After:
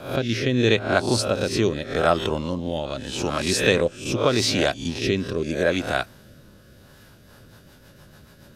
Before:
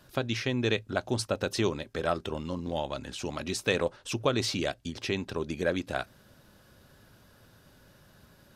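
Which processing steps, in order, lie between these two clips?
spectral swells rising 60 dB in 0.47 s; rotary speaker horn 0.8 Hz, later 7 Hz, at 6.82; gain +8.5 dB

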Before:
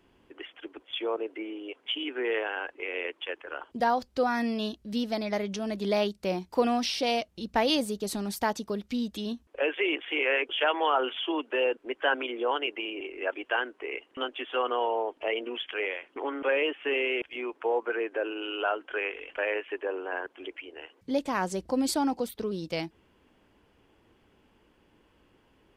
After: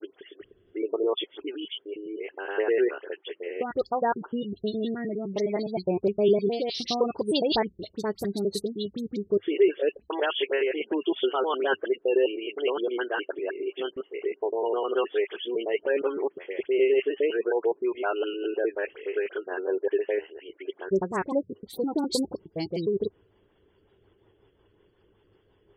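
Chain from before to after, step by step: slices in reverse order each 0.103 s, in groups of 7; dynamic EQ 230 Hz, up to +6 dB, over -43 dBFS, Q 0.86; spectral gate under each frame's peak -25 dB strong; thirty-one-band EQ 100 Hz +9 dB, 250 Hz -9 dB, 400 Hz +10 dB, 2500 Hz -7 dB, 4000 Hz +11 dB; rotary speaker horn 0.65 Hz, later 5.5 Hz, at 10.36; dispersion highs, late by 57 ms, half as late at 2500 Hz

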